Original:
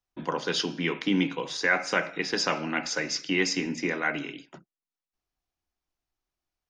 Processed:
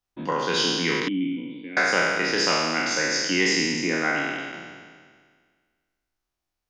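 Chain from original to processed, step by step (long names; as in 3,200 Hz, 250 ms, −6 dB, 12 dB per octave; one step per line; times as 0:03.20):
peak hold with a decay on every bin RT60 1.77 s
0:01.08–0:01.77: formant resonators in series i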